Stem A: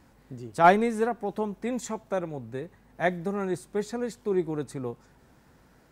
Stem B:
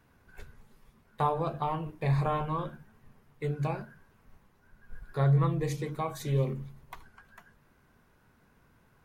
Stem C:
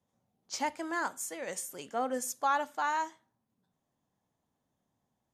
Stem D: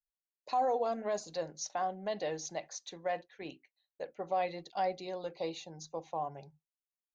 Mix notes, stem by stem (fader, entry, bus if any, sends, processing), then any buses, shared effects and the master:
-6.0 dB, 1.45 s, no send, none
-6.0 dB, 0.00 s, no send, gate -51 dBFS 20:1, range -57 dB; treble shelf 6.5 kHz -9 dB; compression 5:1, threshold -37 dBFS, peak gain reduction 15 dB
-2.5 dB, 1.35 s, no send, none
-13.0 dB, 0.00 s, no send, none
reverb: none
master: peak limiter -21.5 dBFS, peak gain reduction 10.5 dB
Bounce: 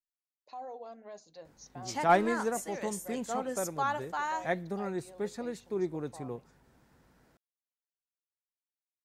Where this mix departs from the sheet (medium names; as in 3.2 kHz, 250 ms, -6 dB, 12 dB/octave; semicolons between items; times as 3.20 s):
stem B: muted; master: missing peak limiter -21.5 dBFS, peak gain reduction 10.5 dB